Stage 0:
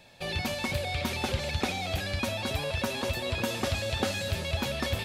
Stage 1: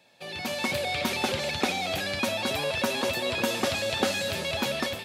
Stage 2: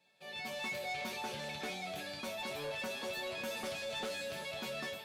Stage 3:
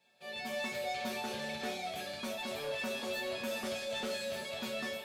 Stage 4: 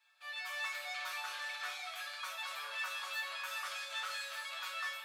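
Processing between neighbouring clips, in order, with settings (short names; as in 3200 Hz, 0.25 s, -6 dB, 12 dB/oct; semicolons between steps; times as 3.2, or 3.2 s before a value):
HPF 190 Hz 12 dB/oct; AGC gain up to 10 dB; gain -5.5 dB
resonator bank D3 major, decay 0.23 s; soft clip -35.5 dBFS, distortion -15 dB; gain +1.5 dB
reverb RT60 0.45 s, pre-delay 4 ms, DRR 2.5 dB
ladder high-pass 1100 Hz, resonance 60%; gain +8.5 dB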